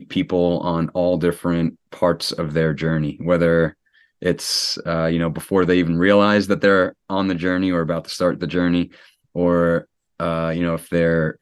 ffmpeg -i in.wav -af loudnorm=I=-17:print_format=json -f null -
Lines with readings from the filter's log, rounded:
"input_i" : "-19.8",
"input_tp" : "-1.3",
"input_lra" : "3.0",
"input_thresh" : "-30.1",